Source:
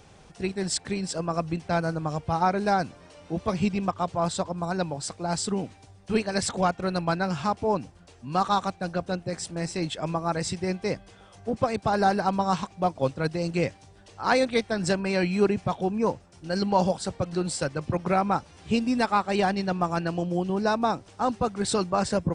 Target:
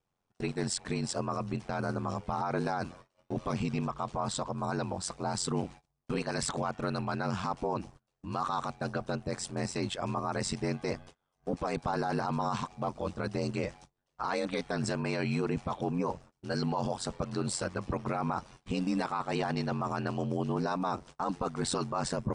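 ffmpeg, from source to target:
-af "agate=range=0.0355:threshold=0.00562:ratio=16:detection=peak,equalizer=f=1100:t=o:w=0.67:g=5.5,alimiter=limit=0.0891:level=0:latency=1:release=10,aeval=exprs='val(0)*sin(2*PI*45*n/s)':c=same"

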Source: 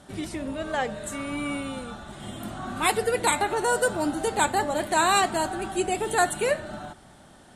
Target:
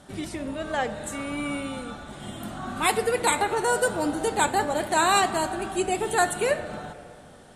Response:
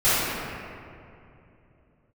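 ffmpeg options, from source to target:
-filter_complex "[0:a]asplit=2[s0][s1];[1:a]atrim=start_sample=2205[s2];[s1][s2]afir=irnorm=-1:irlink=0,volume=0.0224[s3];[s0][s3]amix=inputs=2:normalize=0"

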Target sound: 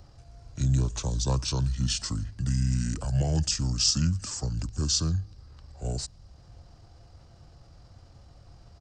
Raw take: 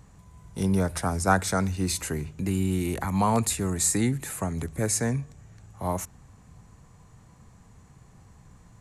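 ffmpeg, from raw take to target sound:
-filter_complex "[0:a]asetrate=30296,aresample=44100,atempo=1.45565,acrossover=split=200|3000[s0][s1][s2];[s1]acompressor=threshold=0.00112:ratio=1.5[s3];[s0][s3][s2]amix=inputs=3:normalize=0,volume=1.19"

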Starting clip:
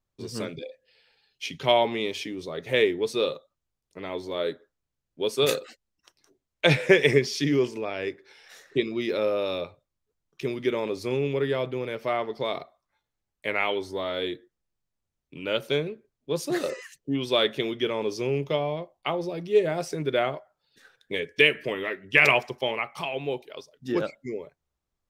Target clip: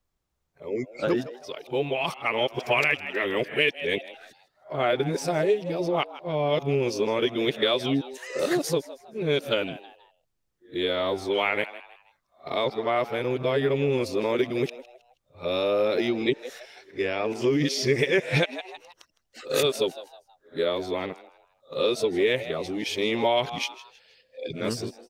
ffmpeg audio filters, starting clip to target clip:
-filter_complex "[0:a]areverse,asplit=4[s0][s1][s2][s3];[s1]adelay=159,afreqshift=120,volume=0.126[s4];[s2]adelay=318,afreqshift=240,volume=0.0442[s5];[s3]adelay=477,afreqshift=360,volume=0.0155[s6];[s0][s4][s5][s6]amix=inputs=4:normalize=0,acompressor=threshold=0.0708:ratio=6,volume=1.58"

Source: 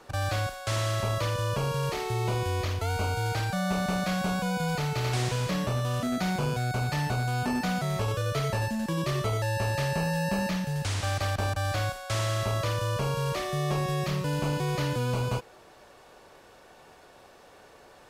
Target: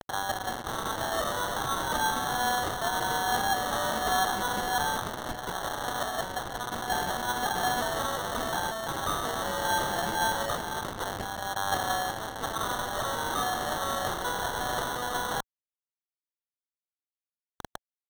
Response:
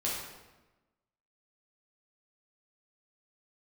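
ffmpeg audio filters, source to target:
-filter_complex "[0:a]aphaser=in_gain=1:out_gain=1:delay=4.3:decay=0.66:speed=0.17:type=sinusoidal,aresample=16000,aresample=44100,asplit=2[s0][s1];[s1]alimiter=limit=0.119:level=0:latency=1:release=26,volume=0.944[s2];[s0][s2]amix=inputs=2:normalize=0,aecho=1:1:226:0.0708,asoftclip=type=tanh:threshold=0.0891,acrusher=bits=4:mix=0:aa=0.000001,equalizer=f=120:w=0.57:g=-14.5,afftfilt=real='re*gte(hypot(re,im),0.00447)':imag='im*gte(hypot(re,im),0.00447)':win_size=1024:overlap=0.75,areverse,acompressor=mode=upward:threshold=0.0282:ratio=2.5,areverse,lowshelf=f=530:t=q:w=3:g=-11.5,acrusher=samples=18:mix=1:aa=0.000001,anlmdn=0.631,volume=0.708"

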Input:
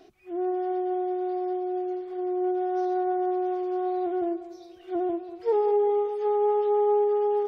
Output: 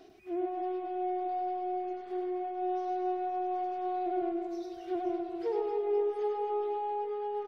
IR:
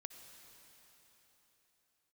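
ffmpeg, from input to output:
-af "acompressor=threshold=0.0282:ratio=6,aeval=exprs='0.0562*(cos(1*acos(clip(val(0)/0.0562,-1,1)))-cos(1*PI/2))+0.00112*(cos(7*acos(clip(val(0)/0.0562,-1,1)))-cos(7*PI/2))':c=same,aecho=1:1:100|260|516|925.6|1581:0.631|0.398|0.251|0.158|0.1"

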